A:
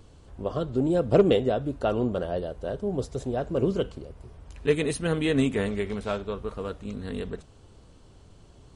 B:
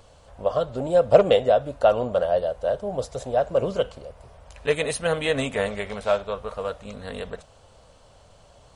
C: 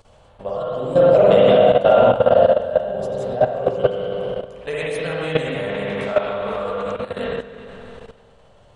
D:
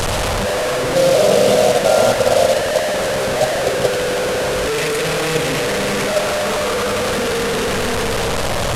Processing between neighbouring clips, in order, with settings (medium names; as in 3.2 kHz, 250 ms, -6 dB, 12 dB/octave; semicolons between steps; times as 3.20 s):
resonant low shelf 450 Hz -7.5 dB, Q 3; trim +4.5 dB
spring tank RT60 2.5 s, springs 45/50/58 ms, chirp 65 ms, DRR -8.5 dB; level held to a coarse grid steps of 13 dB; trim +1.5 dB
one-bit delta coder 64 kbps, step -11.5 dBFS; trim -1 dB